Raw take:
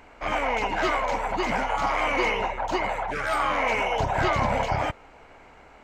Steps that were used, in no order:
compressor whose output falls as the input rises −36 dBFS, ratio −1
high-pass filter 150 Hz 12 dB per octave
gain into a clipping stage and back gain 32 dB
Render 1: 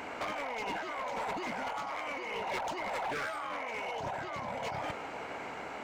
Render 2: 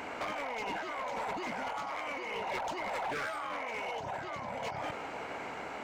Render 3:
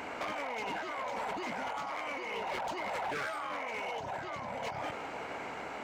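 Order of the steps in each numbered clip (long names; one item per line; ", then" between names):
high-pass filter, then compressor whose output falls as the input rises, then gain into a clipping stage and back
compressor whose output falls as the input rises, then high-pass filter, then gain into a clipping stage and back
compressor whose output falls as the input rises, then gain into a clipping stage and back, then high-pass filter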